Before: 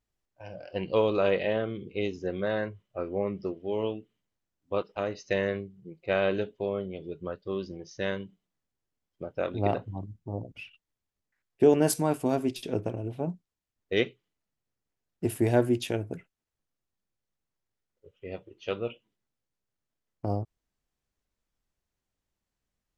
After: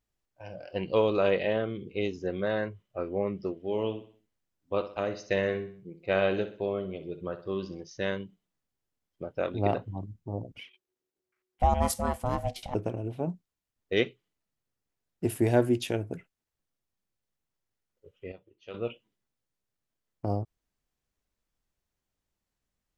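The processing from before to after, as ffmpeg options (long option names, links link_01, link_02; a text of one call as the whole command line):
ffmpeg -i in.wav -filter_complex "[0:a]asettb=1/sr,asplit=3[link_01][link_02][link_03];[link_01]atrim=end=3.614[link_04];[link_02]atrim=start=3.61:end=7.83,asetpts=PTS-STARTPTS,afade=type=in:duration=0.004:curve=qsin,afade=type=out:start_time=4.216:duration=0.004:curve=qsin,aecho=1:1:63|126|189|252:0.251|0.105|0.0443|0.0186,atrim=end_sample=186102[link_05];[link_03]atrim=start=7.826[link_06];[link_04][link_05]acrossfade=duration=0.004:curve1=hsin:curve2=qsin[link_07];[link_07][link_06]acrossfade=duration=0.004:curve1=qsin:curve2=hsin,asettb=1/sr,asplit=3[link_08][link_09][link_10];[link_08]atrim=end=10.594[link_11];[link_09]atrim=start=10.59:end=12.75,asetpts=PTS-STARTPTS,afade=type=in:duration=0.004:curve=qsin,afade=type=out:start_time=2.156:duration=0.004:curve=qsin,aeval=exprs='val(0)*sin(2*PI*370*n/s)':channel_layout=same[link_12];[link_10]atrim=start=12.746[link_13];[link_11][link_12]acrossfade=duration=0.004:curve1=hsin:curve2=qsin[link_14];[link_14][link_13]acrossfade=duration=0.004:curve1=qsin:curve2=hsin,asplit=3[link_15][link_16][link_17];[link_15]atrim=end=18.322[link_18];[link_16]atrim=start=18.318:end=18.742,asetpts=PTS-STARTPTS,volume=-11.5dB[link_19];[link_17]atrim=start=18.738[link_20];[link_18][link_19]acrossfade=duration=0.004:curve1=hsin:curve2=hsin[link_21];[link_21][link_20]acrossfade=duration=0.004:curve1=hsin:curve2=hsin" out.wav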